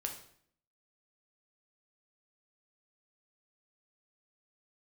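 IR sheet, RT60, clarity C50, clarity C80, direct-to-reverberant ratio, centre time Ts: 0.60 s, 8.0 dB, 12.0 dB, 2.0 dB, 19 ms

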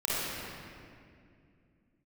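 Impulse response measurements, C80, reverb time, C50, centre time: -3.5 dB, 2.3 s, -7.5 dB, 198 ms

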